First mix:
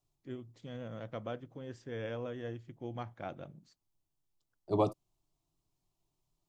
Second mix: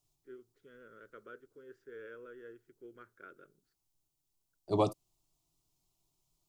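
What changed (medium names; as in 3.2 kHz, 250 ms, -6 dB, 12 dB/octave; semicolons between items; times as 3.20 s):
first voice: add two resonant band-passes 770 Hz, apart 1.8 oct; master: add treble shelf 3.3 kHz +10 dB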